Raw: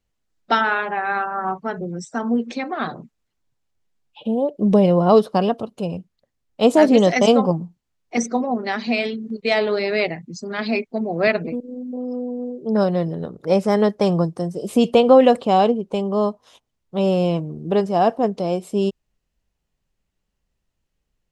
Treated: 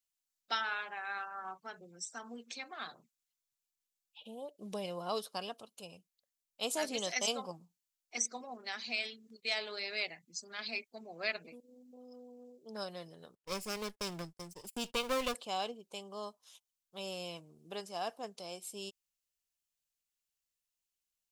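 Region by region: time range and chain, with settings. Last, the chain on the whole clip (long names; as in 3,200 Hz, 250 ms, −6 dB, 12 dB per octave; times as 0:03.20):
0:13.35–0:15.34: lower of the sound and its delayed copy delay 0.41 ms + low-shelf EQ 140 Hz +11 dB + noise gate −28 dBFS, range −35 dB
whole clip: first-order pre-emphasis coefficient 0.97; notch filter 1,900 Hz, Q 18; level −2 dB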